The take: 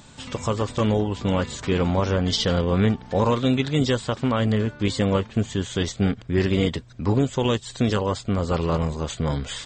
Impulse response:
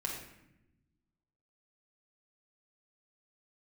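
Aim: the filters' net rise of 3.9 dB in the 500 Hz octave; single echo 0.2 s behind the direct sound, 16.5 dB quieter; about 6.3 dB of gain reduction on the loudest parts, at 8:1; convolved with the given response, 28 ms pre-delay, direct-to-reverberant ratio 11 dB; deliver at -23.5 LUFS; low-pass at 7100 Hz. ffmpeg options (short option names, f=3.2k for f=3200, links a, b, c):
-filter_complex "[0:a]lowpass=7.1k,equalizer=f=500:t=o:g=4.5,acompressor=threshold=-21dB:ratio=8,aecho=1:1:200:0.15,asplit=2[a][b];[1:a]atrim=start_sample=2205,adelay=28[c];[b][c]afir=irnorm=-1:irlink=0,volume=-13.5dB[d];[a][d]amix=inputs=2:normalize=0,volume=3dB"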